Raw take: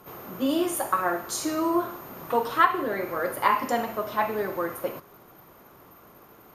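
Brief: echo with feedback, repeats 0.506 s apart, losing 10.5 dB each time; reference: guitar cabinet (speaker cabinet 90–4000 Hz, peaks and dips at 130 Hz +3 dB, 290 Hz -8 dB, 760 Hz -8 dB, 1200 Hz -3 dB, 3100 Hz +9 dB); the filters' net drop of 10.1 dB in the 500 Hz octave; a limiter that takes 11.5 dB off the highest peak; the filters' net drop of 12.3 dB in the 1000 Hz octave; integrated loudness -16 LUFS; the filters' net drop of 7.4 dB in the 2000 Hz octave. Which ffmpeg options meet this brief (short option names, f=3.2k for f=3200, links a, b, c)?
-af "equalizer=f=500:t=o:g=-8.5,equalizer=f=1k:t=o:g=-7.5,equalizer=f=2k:t=o:g=-6,alimiter=level_in=3dB:limit=-24dB:level=0:latency=1,volume=-3dB,highpass=90,equalizer=f=130:t=q:w=4:g=3,equalizer=f=290:t=q:w=4:g=-8,equalizer=f=760:t=q:w=4:g=-8,equalizer=f=1.2k:t=q:w=4:g=-3,equalizer=f=3.1k:t=q:w=4:g=9,lowpass=f=4k:w=0.5412,lowpass=f=4k:w=1.3066,aecho=1:1:506|1012|1518:0.299|0.0896|0.0269,volume=23.5dB"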